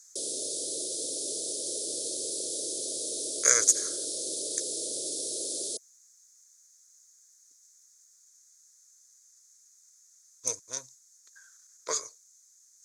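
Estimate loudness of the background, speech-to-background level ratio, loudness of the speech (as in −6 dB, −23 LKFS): −31.5 LKFS, 4.0 dB, −27.5 LKFS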